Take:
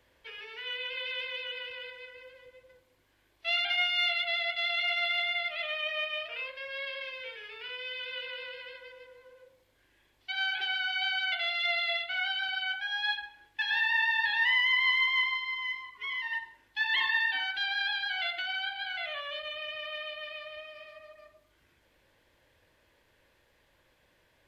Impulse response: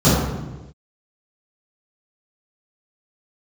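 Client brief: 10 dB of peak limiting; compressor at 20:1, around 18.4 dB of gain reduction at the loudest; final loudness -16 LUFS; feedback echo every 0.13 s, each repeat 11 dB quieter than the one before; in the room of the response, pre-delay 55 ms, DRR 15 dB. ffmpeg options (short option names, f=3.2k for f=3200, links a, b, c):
-filter_complex "[0:a]acompressor=threshold=-42dB:ratio=20,alimiter=level_in=15.5dB:limit=-24dB:level=0:latency=1,volume=-15.5dB,aecho=1:1:130|260|390:0.282|0.0789|0.0221,asplit=2[a][b];[1:a]atrim=start_sample=2205,adelay=55[c];[b][c]afir=irnorm=-1:irlink=0,volume=-39dB[d];[a][d]amix=inputs=2:normalize=0,volume=29.5dB"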